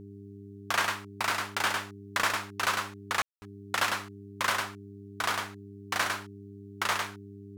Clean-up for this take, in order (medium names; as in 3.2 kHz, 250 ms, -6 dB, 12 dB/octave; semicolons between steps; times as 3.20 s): de-hum 100 Hz, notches 4; room tone fill 3.22–3.42 s; inverse comb 103 ms -4 dB